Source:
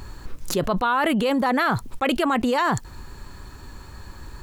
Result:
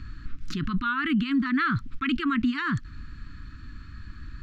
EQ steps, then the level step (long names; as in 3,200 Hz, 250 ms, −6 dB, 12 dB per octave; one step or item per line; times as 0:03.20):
elliptic band-stop filter 290–1,300 Hz, stop band 60 dB
high-frequency loss of the air 220 metres
0.0 dB